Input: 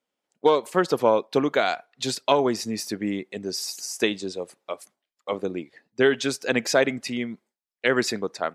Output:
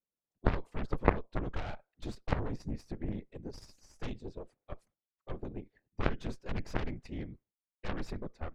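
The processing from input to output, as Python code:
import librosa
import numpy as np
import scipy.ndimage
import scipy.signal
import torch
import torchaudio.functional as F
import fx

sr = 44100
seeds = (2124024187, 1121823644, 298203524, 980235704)

p1 = fx.whisperise(x, sr, seeds[0])
p2 = fx.cheby_harmonics(p1, sr, harmonics=(3, 8), levels_db=(-8, -33), full_scale_db=-4.5)
p3 = fx.level_steps(p2, sr, step_db=23)
p4 = p2 + (p3 * librosa.db_to_amplitude(-0.5))
p5 = fx.riaa(p4, sr, side='playback')
y = p5 * librosa.db_to_amplitude(-7.0)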